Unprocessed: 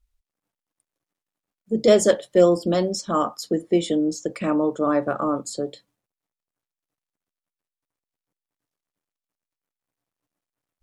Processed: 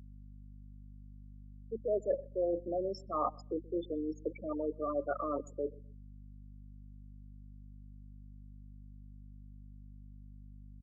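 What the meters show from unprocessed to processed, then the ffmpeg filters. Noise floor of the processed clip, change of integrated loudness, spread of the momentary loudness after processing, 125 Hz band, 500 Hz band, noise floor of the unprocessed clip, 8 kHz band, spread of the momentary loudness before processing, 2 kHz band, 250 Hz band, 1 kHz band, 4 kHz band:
−51 dBFS, −15.0 dB, 20 LU, −14.5 dB, −14.0 dB, below −85 dBFS, below −30 dB, 10 LU, −20.0 dB, −17.0 dB, −11.5 dB, below −25 dB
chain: -filter_complex "[0:a]areverse,acompressor=threshold=-28dB:ratio=6,areverse,afftfilt=real='re*gte(hypot(re,im),0.0708)':imag='im*gte(hypot(re,im),0.0708)':win_size=1024:overlap=0.75,acrossover=split=340 2700:gain=0.0794 1 0.126[link_01][link_02][link_03];[link_01][link_02][link_03]amix=inputs=3:normalize=0,asplit=2[link_04][link_05];[link_05]adelay=127,lowpass=frequency=850:poles=1,volume=-22.5dB,asplit=2[link_06][link_07];[link_07]adelay=127,lowpass=frequency=850:poles=1,volume=0.28[link_08];[link_04][link_06][link_08]amix=inputs=3:normalize=0,aeval=exprs='val(0)+0.00316*(sin(2*PI*50*n/s)+sin(2*PI*2*50*n/s)/2+sin(2*PI*3*50*n/s)/3+sin(2*PI*4*50*n/s)/4+sin(2*PI*5*50*n/s)/5)':channel_layout=same"

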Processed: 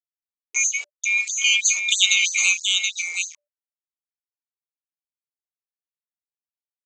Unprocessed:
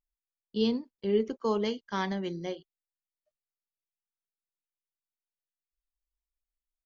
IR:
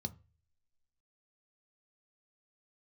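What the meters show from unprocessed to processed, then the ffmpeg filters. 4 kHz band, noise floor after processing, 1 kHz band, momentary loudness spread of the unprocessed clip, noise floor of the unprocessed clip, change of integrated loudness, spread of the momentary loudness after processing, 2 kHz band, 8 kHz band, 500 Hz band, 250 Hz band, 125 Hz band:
+21.5 dB, below −85 dBFS, −12.5 dB, 9 LU, below −85 dBFS, +12.5 dB, 9 LU, +24.5 dB, can't be measured, below −30 dB, below −40 dB, below −40 dB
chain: -filter_complex "[0:a]afftfilt=real='real(if(lt(b,920),b+92*(1-2*mod(floor(b/92),2)),b),0)':imag='imag(if(lt(b,920),b+92*(1-2*mod(floor(b/92),2)),b),0)':win_size=2048:overlap=0.75,alimiter=level_in=2dB:limit=-24dB:level=0:latency=1:release=134,volume=-2dB,agate=range=-43dB:threshold=-55dB:ratio=16:detection=peak,aexciter=amount=11:drive=4.8:freq=2700,aemphasis=mode=production:type=bsi,aresample=16000,aeval=exprs='val(0)*gte(abs(val(0)),0.0158)':channel_layout=same,aresample=44100,bandreject=frequency=293.3:width_type=h:width=4,bandreject=frequency=586.6:width_type=h:width=4,dynaudnorm=framelen=450:gausssize=7:maxgain=9.5dB,highpass=150,bandreject=frequency=1600:width=6.8,asplit=2[link_01][link_02];[link_02]aecho=0:1:727:0.562[link_03];[link_01][link_03]amix=inputs=2:normalize=0,afftfilt=real='re*gte(b*sr/1024,350*pow(4100/350,0.5+0.5*sin(2*PI*3.1*pts/sr)))':imag='im*gte(b*sr/1024,350*pow(4100/350,0.5+0.5*sin(2*PI*3.1*pts/sr)))':win_size=1024:overlap=0.75"

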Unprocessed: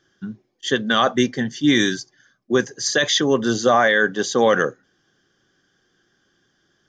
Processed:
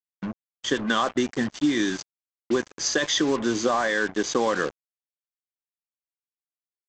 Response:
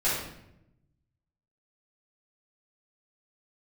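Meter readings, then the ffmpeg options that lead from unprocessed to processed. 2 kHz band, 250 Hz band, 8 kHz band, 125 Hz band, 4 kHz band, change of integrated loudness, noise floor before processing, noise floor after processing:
−7.0 dB, −4.0 dB, −3.5 dB, −8.5 dB, −6.5 dB, −6.0 dB, −67 dBFS, below −85 dBFS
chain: -af "equalizer=frequency=125:width_type=o:width=0.33:gain=-5,equalizer=frequency=315:width_type=o:width=0.33:gain=7,equalizer=frequency=1000:width_type=o:width=0.33:gain=8,equalizer=frequency=4000:width_type=o:width=0.33:gain=-4,acompressor=threshold=-17dB:ratio=10,aresample=16000,acrusher=bits=4:mix=0:aa=0.5,aresample=44100,volume=-2dB"

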